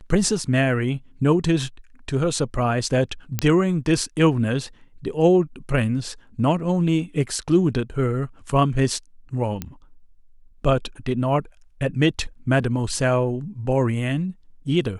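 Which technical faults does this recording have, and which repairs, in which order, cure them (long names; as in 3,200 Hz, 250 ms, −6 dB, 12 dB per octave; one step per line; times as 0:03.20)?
0:03.39: click −5 dBFS
0:09.62: click −13 dBFS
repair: click removal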